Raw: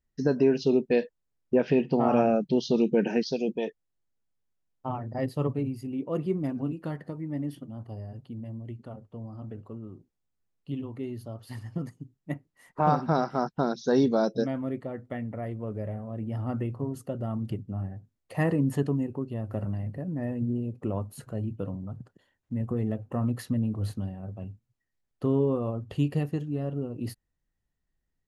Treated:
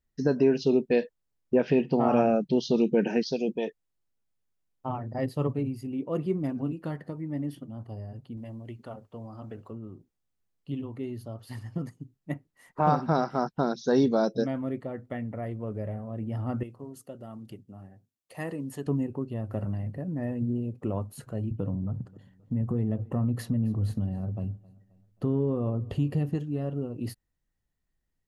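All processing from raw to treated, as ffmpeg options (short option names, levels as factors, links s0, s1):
-filter_complex "[0:a]asettb=1/sr,asplit=3[s0][s1][s2];[s0]atrim=end=8.374[s3];[s1]atrim=start=8.37:end=9.71,asetpts=PTS-STARTPTS,afade=t=in:d=0.004:c=qsin,afade=t=out:st=1.336:d=0.004:c=qsin,lowshelf=f=390:g=-10.5,acontrast=54[s4];[s2]atrim=start=9.706[s5];[s3][s4]acrossfade=d=0.004:c1=hsin:c2=qsin[s6];[s6][s5]acrossfade=d=0.004:c1=qsin:c2=hsin,asettb=1/sr,asplit=3[s7][s8][s9];[s7]atrim=end=16.634[s10];[s8]atrim=start=16.63:end=18.87,asetpts=PTS-STARTPTS,afade=t=in:d=0.004:c=qsin,afade=t=out:st=2.236:d=0.004:c=qsin,highpass=f=570:p=1,equalizer=f=1200:w=0.39:g=-7[s11];[s9]atrim=start=18.866[s12];[s10][s11]acrossfade=d=0.004:c1=hsin:c2=qsin[s13];[s13][s12]acrossfade=d=0.004:c1=qsin:c2=hsin,asettb=1/sr,asplit=3[s14][s15][s16];[s14]atrim=end=21.514[s17];[s15]atrim=start=21.51:end=26.35,asetpts=PTS-STARTPTS,afade=t=in:d=0.004:c=qsin,afade=t=out:st=4.836:d=0.004:c=qsin,lowshelf=f=430:g=9,acompressor=threshold=0.0398:ratio=2:attack=3.2:release=140:knee=1:detection=peak,aecho=1:1:266|532|798:0.0708|0.0347|0.017,atrim=end_sample=213444[s18];[s16]atrim=start=26.346[s19];[s17][s18]acrossfade=d=0.004:c1=hsin:c2=qsin[s20];[s20][s19]acrossfade=d=0.004:c1=qsin:c2=hsin"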